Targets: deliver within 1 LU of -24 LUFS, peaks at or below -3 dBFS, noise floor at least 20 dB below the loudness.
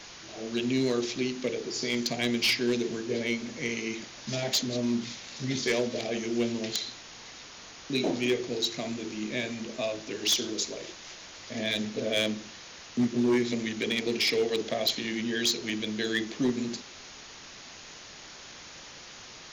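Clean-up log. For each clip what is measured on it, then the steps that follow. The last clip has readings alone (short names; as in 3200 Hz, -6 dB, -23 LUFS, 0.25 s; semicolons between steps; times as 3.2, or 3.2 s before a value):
clipped 0.5%; flat tops at -19.5 dBFS; noise floor -47 dBFS; noise floor target -50 dBFS; loudness -29.5 LUFS; peak -19.5 dBFS; loudness target -24.0 LUFS
-> clip repair -19.5 dBFS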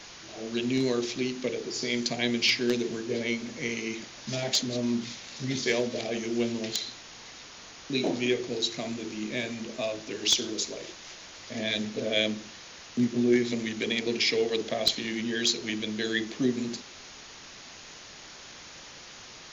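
clipped 0.0%; noise floor -47 dBFS; noise floor target -49 dBFS
-> noise print and reduce 6 dB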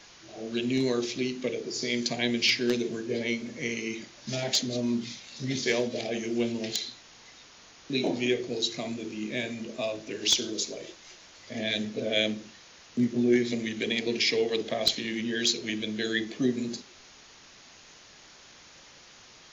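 noise floor -53 dBFS; loudness -29.0 LUFS; peak -10.5 dBFS; loudness target -24.0 LUFS
-> gain +5 dB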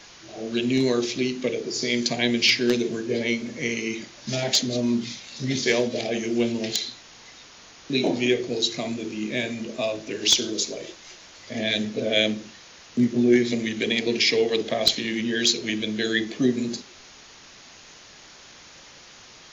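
loudness -24.0 LUFS; peak -5.5 dBFS; noise floor -48 dBFS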